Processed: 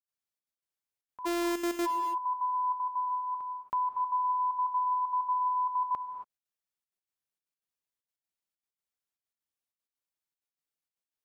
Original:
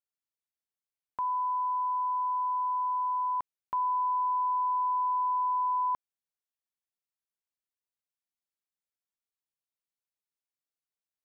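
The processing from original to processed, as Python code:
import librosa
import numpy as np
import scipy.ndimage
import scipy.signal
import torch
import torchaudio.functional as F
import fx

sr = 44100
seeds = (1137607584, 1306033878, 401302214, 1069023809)

y = fx.sample_sort(x, sr, block=128, at=(1.25, 1.85), fade=0.02)
y = fx.highpass(y, sr, hz=fx.line((2.54, 750.0), (3.08, 590.0)), slope=12, at=(2.54, 3.08), fade=0.02)
y = fx.step_gate(y, sr, bpm=193, pattern='.xxxx.x.xxxxx.x', floor_db=-12.0, edge_ms=4.5)
y = fx.rev_gated(y, sr, seeds[0], gate_ms=300, shape='rising', drr_db=9.0)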